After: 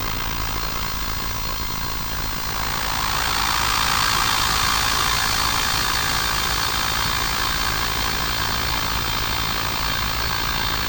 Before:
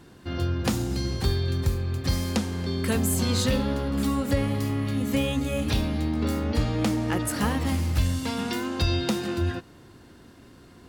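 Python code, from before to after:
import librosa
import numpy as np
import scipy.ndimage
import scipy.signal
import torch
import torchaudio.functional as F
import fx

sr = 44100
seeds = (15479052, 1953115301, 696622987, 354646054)

p1 = fx.spec_flatten(x, sr, power=0.46)
p2 = fx.low_shelf_res(p1, sr, hz=710.0, db=-12.0, q=3.0)
p3 = fx.paulstretch(p2, sr, seeds[0], factor=31.0, window_s=0.1, from_s=1.13)
p4 = p3 * np.sin(2.0 * np.pi * 28.0 * np.arange(len(p3)) / sr)
p5 = fx.schmitt(p4, sr, flips_db=-25.0)
p6 = p4 + (p5 * librosa.db_to_amplitude(-5.0))
p7 = fx.add_hum(p6, sr, base_hz=50, snr_db=12)
p8 = p7 + fx.echo_wet_highpass(p7, sr, ms=404, feedback_pct=84, hz=4100.0, wet_db=-5.0, dry=0)
p9 = fx.pwm(p8, sr, carrier_hz=16000.0)
y = p9 * librosa.db_to_amplitude(4.5)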